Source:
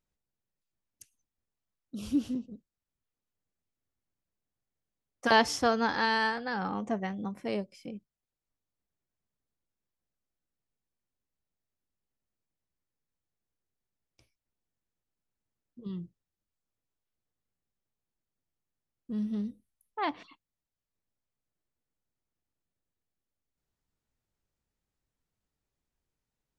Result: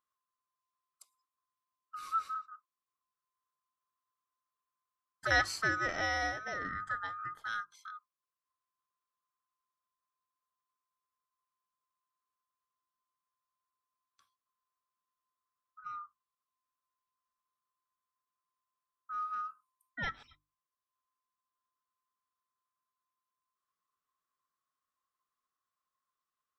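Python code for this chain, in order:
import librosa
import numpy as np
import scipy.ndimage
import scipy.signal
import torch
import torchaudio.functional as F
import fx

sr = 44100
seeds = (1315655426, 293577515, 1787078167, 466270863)

y = fx.band_swap(x, sr, width_hz=1000)
y = fx.hum_notches(y, sr, base_hz=50, count=7)
y = y * 10.0 ** (-5.5 / 20.0)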